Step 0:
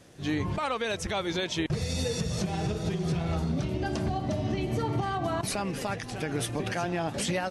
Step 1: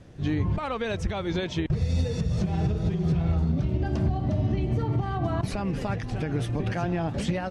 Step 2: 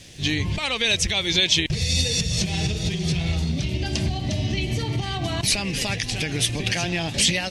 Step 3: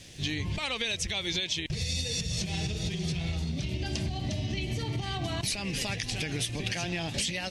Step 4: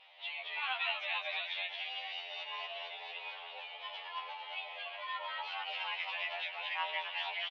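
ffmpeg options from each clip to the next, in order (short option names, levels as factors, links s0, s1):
-af "aemphasis=mode=reproduction:type=bsi,alimiter=limit=0.15:level=0:latency=1:release=317"
-af "aexciter=amount=7.9:drive=6.4:freq=2000"
-af "acompressor=threshold=0.0631:ratio=6,volume=0.631"
-filter_complex "[0:a]asplit=7[s0][s1][s2][s3][s4][s5][s6];[s1]adelay=223,afreqshift=-130,volume=0.708[s7];[s2]adelay=446,afreqshift=-260,volume=0.313[s8];[s3]adelay=669,afreqshift=-390,volume=0.136[s9];[s4]adelay=892,afreqshift=-520,volume=0.0603[s10];[s5]adelay=1115,afreqshift=-650,volume=0.0266[s11];[s6]adelay=1338,afreqshift=-780,volume=0.0116[s12];[s0][s7][s8][s9][s10][s11][s12]amix=inputs=7:normalize=0,highpass=f=450:t=q:w=0.5412,highpass=f=450:t=q:w=1.307,lowpass=f=2900:t=q:w=0.5176,lowpass=f=2900:t=q:w=0.7071,lowpass=f=2900:t=q:w=1.932,afreqshift=260,afftfilt=real='re*2*eq(mod(b,4),0)':imag='im*2*eq(mod(b,4),0)':win_size=2048:overlap=0.75"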